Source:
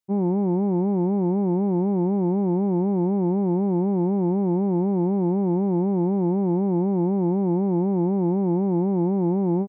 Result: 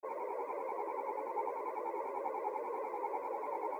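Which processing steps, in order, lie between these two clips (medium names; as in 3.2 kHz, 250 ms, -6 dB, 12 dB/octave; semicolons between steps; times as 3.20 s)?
peak limiter -26 dBFS, peak gain reduction 10.5 dB; cascade formant filter u; wide varispeed 2.55×; modulation noise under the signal 35 dB; whisper effect; three-phase chorus; trim +3.5 dB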